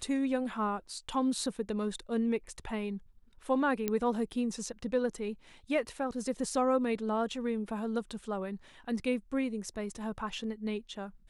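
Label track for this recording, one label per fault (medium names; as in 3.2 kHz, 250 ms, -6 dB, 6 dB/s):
3.880000	3.880000	pop -16 dBFS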